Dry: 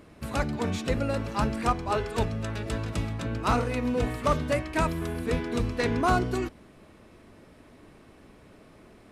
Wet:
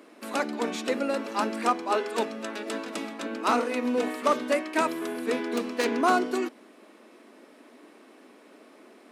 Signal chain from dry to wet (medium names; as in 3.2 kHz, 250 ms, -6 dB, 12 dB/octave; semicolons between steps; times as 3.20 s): 5.55–5.98 s: self-modulated delay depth 0.15 ms; steep high-pass 230 Hz 48 dB/octave; trim +2 dB